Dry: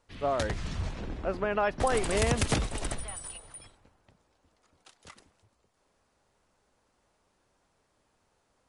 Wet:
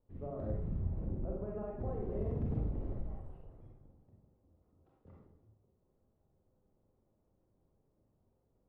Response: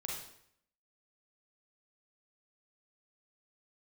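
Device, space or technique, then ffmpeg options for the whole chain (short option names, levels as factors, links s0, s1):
television next door: -filter_complex "[0:a]acompressor=threshold=0.02:ratio=3,lowpass=390[s0];[1:a]atrim=start_sample=2205[s1];[s0][s1]afir=irnorm=-1:irlink=0,volume=1.12"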